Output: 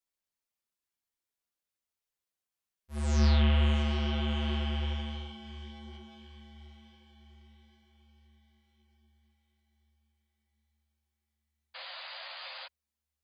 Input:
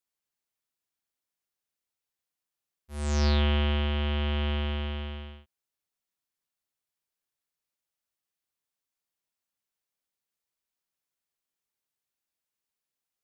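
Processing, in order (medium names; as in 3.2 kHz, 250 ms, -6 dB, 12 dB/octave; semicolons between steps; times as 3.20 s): echo that smears into a reverb 719 ms, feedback 54%, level -12 dB; painted sound noise, 11.74–12.67 s, 510–4900 Hz -41 dBFS; chorus voices 6, 1.4 Hz, delay 12 ms, depth 3.1 ms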